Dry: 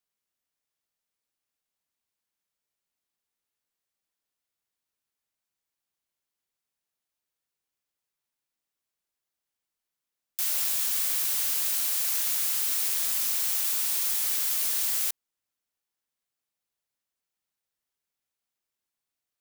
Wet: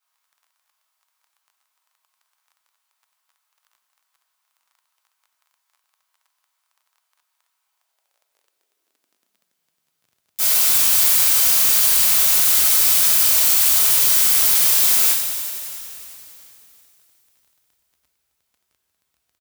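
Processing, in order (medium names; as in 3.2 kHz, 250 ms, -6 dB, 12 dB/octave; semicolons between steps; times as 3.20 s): in parallel at -11.5 dB: integer overflow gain 22 dB; on the sum: two-slope reverb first 0.5 s, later 3.6 s, from -19 dB, DRR -10 dB; crackle 19 per s -47 dBFS; on a send: frequency-shifting echo 339 ms, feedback 55%, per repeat -39 Hz, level -19 dB; on the sum: high-pass sweep 1 kHz -> 64 Hz, 7.61–10.68 s; bit-crushed delay 92 ms, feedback 80%, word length 8-bit, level -12 dB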